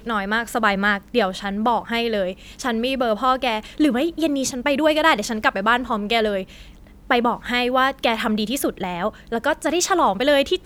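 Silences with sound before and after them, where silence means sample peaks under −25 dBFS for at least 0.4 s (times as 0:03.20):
0:06.42–0:07.10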